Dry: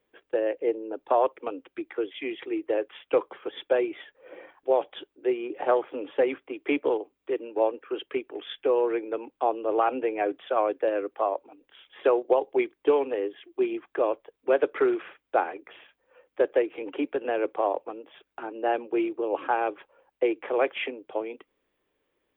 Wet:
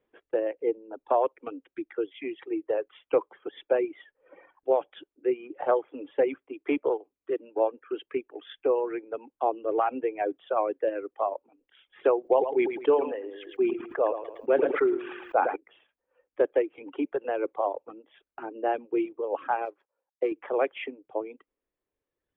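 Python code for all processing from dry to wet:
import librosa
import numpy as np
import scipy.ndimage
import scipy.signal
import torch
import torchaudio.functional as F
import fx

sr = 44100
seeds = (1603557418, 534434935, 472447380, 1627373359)

y = fx.chain(x, sr, fx.echo_feedback(ms=110, feedback_pct=25, wet_db=-7.5),
    fx.sustainer(db_per_s=35.0), at=(12.21, 15.56))
y = fx.chain(y, sr, fx.law_mismatch(coded='A'),
    fx.highpass(hz=330.0, slope=6),
    fx.high_shelf(hz=3200.0, db=-8.5), at=(19.65, 20.32))
y = fx.dereverb_blind(y, sr, rt60_s=1.7)
y = fx.lowpass(y, sr, hz=1600.0, slope=6)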